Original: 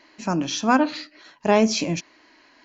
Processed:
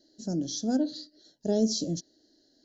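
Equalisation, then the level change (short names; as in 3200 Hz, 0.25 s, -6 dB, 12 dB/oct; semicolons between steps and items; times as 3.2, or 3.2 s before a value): Butterworth band-stop 1100 Hz, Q 0.62; Chebyshev band-stop 1300–4300 Hz, order 2; -4.5 dB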